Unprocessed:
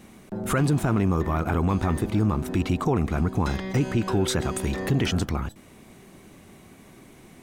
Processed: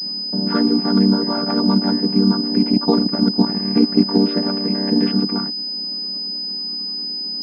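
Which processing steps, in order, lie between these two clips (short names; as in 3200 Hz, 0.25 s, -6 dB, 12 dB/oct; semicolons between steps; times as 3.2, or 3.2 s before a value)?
chord vocoder minor triad, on G3; 2.72–4.19 transient shaper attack +4 dB, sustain -8 dB; pulse-width modulation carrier 5000 Hz; gain +8 dB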